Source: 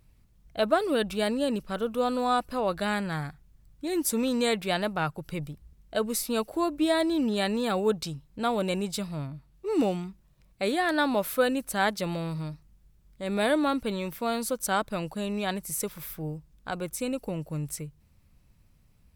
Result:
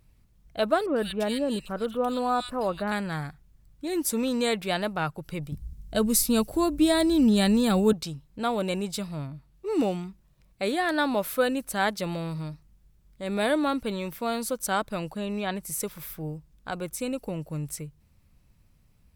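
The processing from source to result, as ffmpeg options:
-filter_complex "[0:a]asettb=1/sr,asplit=3[s0][s1][s2];[s0]atrim=end=0.864[s3];[s1]atrim=start=0.86:end=2.92,asetpts=PTS-STARTPTS,afade=t=in:d=0.004:c=qsin,afade=t=out:st=2.056:d=0.004:c=qsin,acrossover=split=2000[s4][s5];[s5]adelay=100[s6];[s4][s6]amix=inputs=2:normalize=0,atrim=end_sample=90846[s7];[s2]atrim=start=2.916[s8];[s3][s7]acrossfade=d=0.004:c1=hsin:c2=qsin[s9];[s9][s8]acrossfade=d=0.004:c1=qsin:c2=hsin,asettb=1/sr,asplit=3[s10][s11][s12];[s10]atrim=end=5.524[s13];[s11]atrim=start=5.52:end=7.93,asetpts=PTS-STARTPTS,afade=t=in:d=0.004:c=qsin,afade=t=out:st=2.406:d=0.004:c=qsin,bass=f=250:g=14,treble=f=4000:g=8[s14];[s12]atrim=start=7.926[s15];[s13][s14]acrossfade=d=0.004:c1=hsin:c2=qsin[s16];[s16][s15]acrossfade=d=0.004:c1=qsin:c2=hsin,asettb=1/sr,asplit=3[s17][s18][s19];[s17]atrim=end=15.124[s20];[s18]atrim=start=15.12:end=15.65,asetpts=PTS-STARTPTS,afade=t=in:d=0.004:c=qsin,afade=t=out:st=0.526:d=0.004:c=qsin,acrossover=split=4300[s21][s22];[s22]acompressor=threshold=0.002:ratio=4:attack=1:release=60[s23];[s21][s23]amix=inputs=2:normalize=0[s24];[s19]atrim=start=15.646[s25];[s20][s24]acrossfade=d=0.004:c1=hsin:c2=qsin[s26];[s26][s25]acrossfade=d=0.004:c1=qsin:c2=hsin"

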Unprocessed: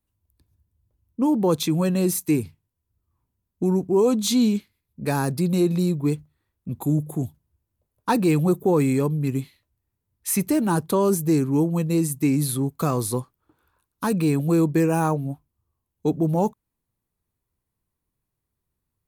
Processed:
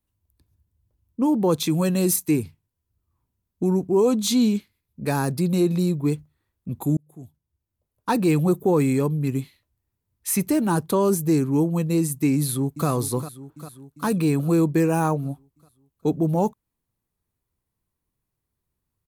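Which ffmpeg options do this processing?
-filter_complex "[0:a]asettb=1/sr,asplit=3[s0][s1][s2];[s0]atrim=end=1.664[s3];[s1]atrim=start=1.66:end=2.16,asetpts=PTS-STARTPTS,afade=t=in:d=0.004:c=qsin,afade=t=out:st=0.496:d=0.004:c=qsin,highshelf=f=4200:g=6.5[s4];[s2]atrim=start=2.156[s5];[s3][s4]acrossfade=d=0.004:c1=hsin:c2=qsin[s6];[s6][s5]acrossfade=d=0.004:c1=qsin:c2=hsin,asplit=2[s7][s8];[s8]afade=t=in:st=12.36:d=0.01,afade=t=out:st=12.88:d=0.01,aecho=0:1:400|800|1200|1600|2000|2400|2800|3200:0.237137|0.154139|0.100191|0.0651239|0.0423305|0.0275148|0.0178846|0.011625[s9];[s7][s9]amix=inputs=2:normalize=0,asplit=2[s10][s11];[s10]atrim=end=6.97,asetpts=PTS-STARTPTS,afade=t=out:st=6.966:d=0.004:c=hsin[s12];[s11]atrim=start=6.97,asetpts=PTS-STARTPTS,afade=t=in:d=1.32[s13];[s12][s13]concat=n=2:v=0:a=1"

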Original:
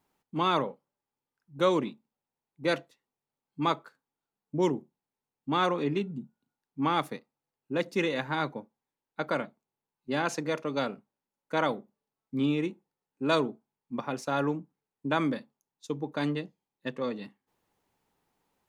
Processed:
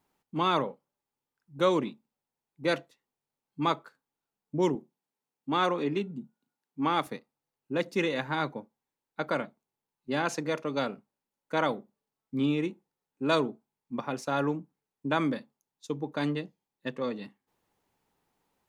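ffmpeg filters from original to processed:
-filter_complex "[0:a]asettb=1/sr,asplit=3[s0][s1][s2];[s0]atrim=end=4.754[s3];[s1]atrim=start=4.75:end=7.07,asetpts=PTS-STARTPTS,afade=t=in:d=0.004:c=qsin,afade=t=out:st=2.316:d=0.004:c=qsin,highpass=160[s4];[s2]atrim=start=7.066[s5];[s3][s4]acrossfade=d=0.004:c1=hsin:c2=qsin[s6];[s6][s5]acrossfade=d=0.004:c1=qsin:c2=hsin"

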